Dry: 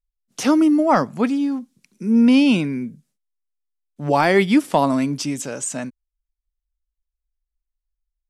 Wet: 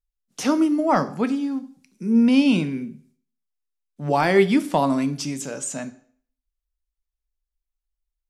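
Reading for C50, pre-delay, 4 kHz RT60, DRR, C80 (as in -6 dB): 16.5 dB, 3 ms, 0.50 s, 11.0 dB, 20.0 dB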